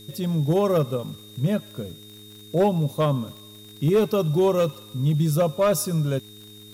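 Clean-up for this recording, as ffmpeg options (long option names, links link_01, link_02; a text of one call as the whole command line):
ffmpeg -i in.wav -af "adeclick=threshold=4,bandreject=frequency=105.1:width_type=h:width=4,bandreject=frequency=210.2:width_type=h:width=4,bandreject=frequency=315.3:width_type=h:width=4,bandreject=frequency=420.4:width_type=h:width=4,bandreject=frequency=3700:width=30,agate=range=-21dB:threshold=-37dB" out.wav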